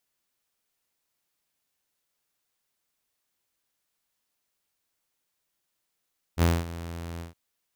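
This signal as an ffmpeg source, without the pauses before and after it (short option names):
-f lavfi -i "aevalsrc='0.178*(2*mod(84.4*t,1)-1)':d=0.969:s=44100,afade=t=in:d=0.052,afade=t=out:st=0.052:d=0.223:silence=0.141,afade=t=out:st=0.83:d=0.139"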